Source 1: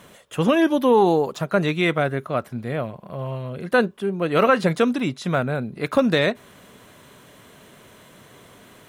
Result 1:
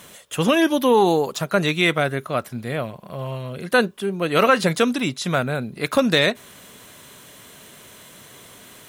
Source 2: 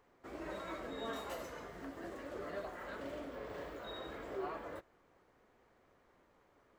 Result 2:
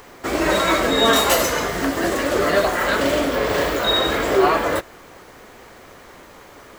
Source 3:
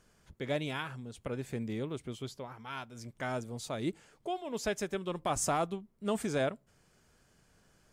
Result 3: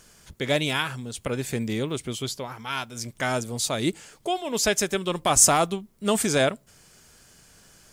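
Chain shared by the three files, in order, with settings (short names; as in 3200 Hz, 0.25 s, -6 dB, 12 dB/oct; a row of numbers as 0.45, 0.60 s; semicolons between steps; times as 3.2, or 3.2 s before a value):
high shelf 2700 Hz +11 dB; normalise peaks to -3 dBFS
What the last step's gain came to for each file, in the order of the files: -0.5, +24.5, +8.5 dB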